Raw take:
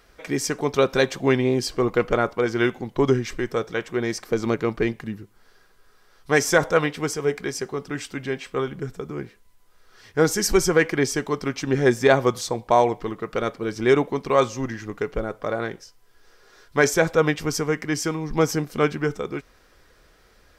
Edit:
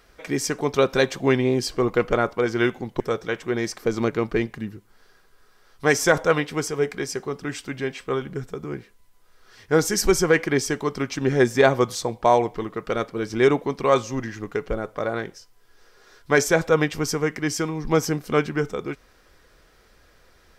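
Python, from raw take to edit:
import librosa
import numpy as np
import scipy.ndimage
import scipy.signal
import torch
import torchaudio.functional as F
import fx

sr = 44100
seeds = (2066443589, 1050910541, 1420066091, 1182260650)

y = fx.edit(x, sr, fx.cut(start_s=3.0, length_s=0.46), tone=tone)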